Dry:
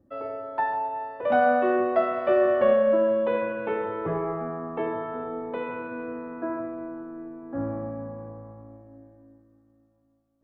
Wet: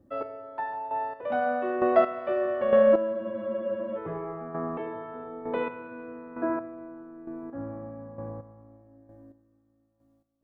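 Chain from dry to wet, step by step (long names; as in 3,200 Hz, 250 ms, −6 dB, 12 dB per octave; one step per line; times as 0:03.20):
square-wave tremolo 1.1 Hz, depth 65%, duty 25%
frozen spectrum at 0:03.16, 0.80 s
level +2.5 dB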